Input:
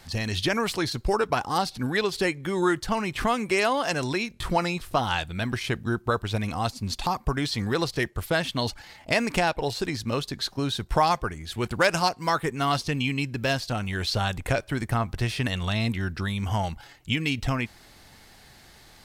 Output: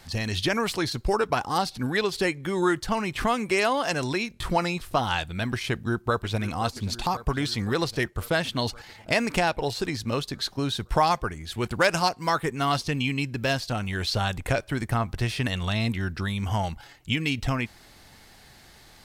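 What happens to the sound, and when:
5.70–6.41 s: echo throw 530 ms, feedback 70%, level -14.5 dB

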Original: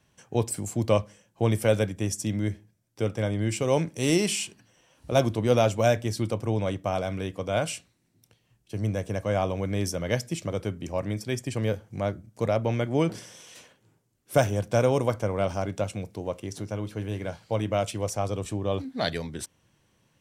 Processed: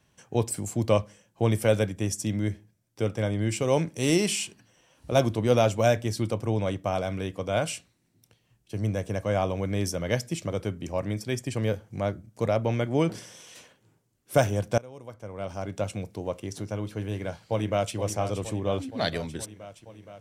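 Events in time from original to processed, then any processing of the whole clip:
14.78–15.89 s: fade in quadratic, from -23.5 dB
17.04–17.96 s: echo throw 470 ms, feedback 75%, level -10.5 dB

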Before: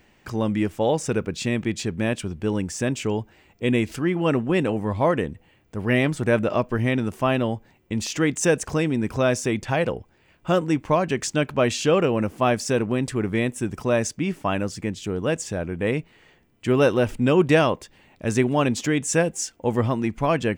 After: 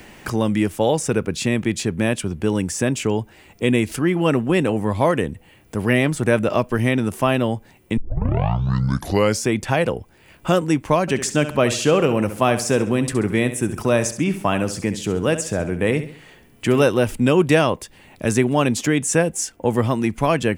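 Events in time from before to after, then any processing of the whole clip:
7.97 s: tape start 1.55 s
11.01–16.83 s: feedback delay 67 ms, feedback 36%, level -12 dB
whole clip: peaking EQ 11 kHz +10 dB 0.74 oct; three bands compressed up and down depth 40%; trim +3 dB

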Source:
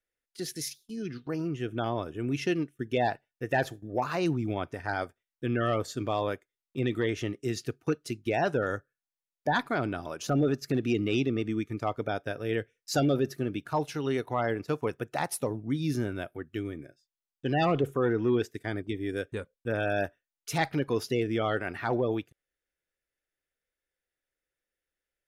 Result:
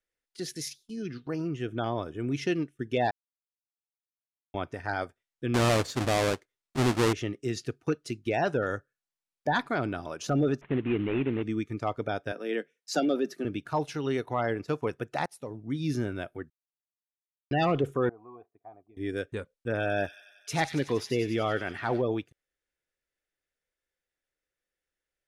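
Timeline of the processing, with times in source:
1.70–2.46 s: band-stop 2.7 kHz
3.11–4.54 s: mute
5.54–7.13 s: square wave that keeps the level
10.61–11.43 s: CVSD coder 16 kbps
12.32–13.45 s: Chebyshev high-pass 160 Hz, order 8
15.26–15.89 s: fade in, from -20 dB
16.50–17.51 s: mute
18.09–18.97 s: cascade formant filter a
19.72–22.02 s: feedback echo behind a high-pass 93 ms, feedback 69%, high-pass 3.1 kHz, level -6 dB
whole clip: low-pass 9.6 kHz 12 dB/octave

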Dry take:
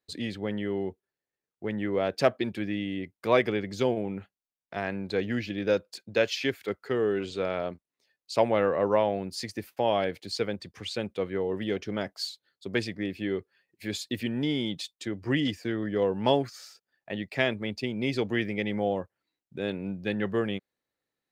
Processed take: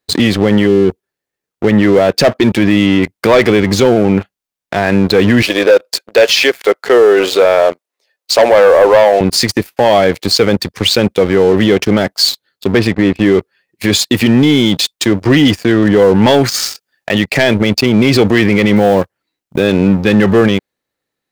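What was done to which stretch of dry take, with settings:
0.67–0.95 s: spectral selection erased 530–2200 Hz
5.42–9.21 s: resonant high-pass 520 Hz, resonance Q 1.5
12.72–13.35 s: distance through air 230 m
16.34–17.24 s: treble shelf 2 kHz +6.5 dB
18.76–19.67 s: block-companded coder 7-bit
whole clip: waveshaping leveller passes 3; loudness maximiser +16 dB; trim -1 dB

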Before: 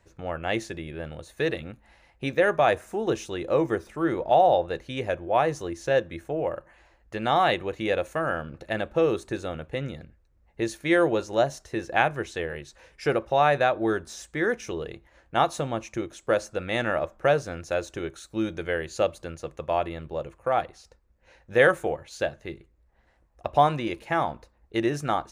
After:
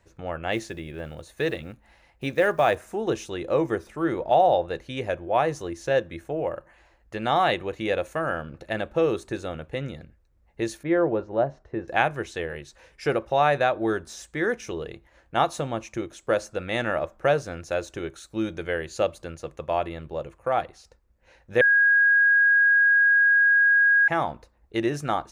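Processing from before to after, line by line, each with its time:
0.52–2.90 s: block-companded coder 7-bit
10.83–11.88 s: Bessel low-pass 1.1 kHz
21.61–24.08 s: bleep 1.64 kHz -15 dBFS

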